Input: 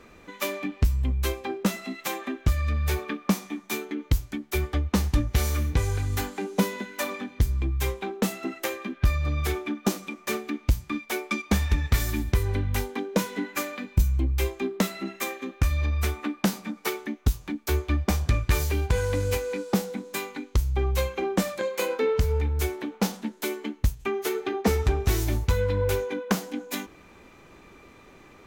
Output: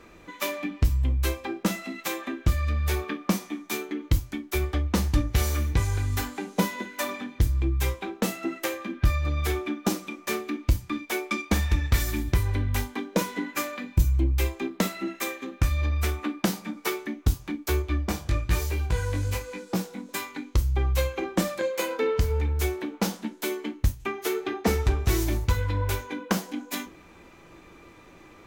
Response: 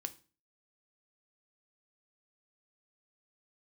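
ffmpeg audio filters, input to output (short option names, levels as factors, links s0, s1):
-filter_complex "[0:a]asettb=1/sr,asplit=3[s0][s1][s2];[s0]atrim=end=17.824[s3];[s1]atrim=start=17.82:end=20.09,asetpts=PTS-STARTPTS,afade=t=in:d=0.004:c=qsin,afade=t=out:st=2.266:d=0.004:c=qsin,flanger=delay=15.5:depth=5.3:speed=1.1[s4];[s2]atrim=start=20.086[s5];[s3][s4]acrossfade=d=0.004:c1=hsin:c2=qsin[s6];[s6][s5]acrossfade=d=0.004:c1=qsin:c2=hsin[s7];[1:a]atrim=start_sample=2205,atrim=end_sample=3087[s8];[s7][s8]afir=irnorm=-1:irlink=0,volume=1.33"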